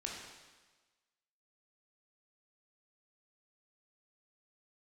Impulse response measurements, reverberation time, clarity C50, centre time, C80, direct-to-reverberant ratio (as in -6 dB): 1.3 s, 1.5 dB, 66 ms, 3.5 dB, -2.0 dB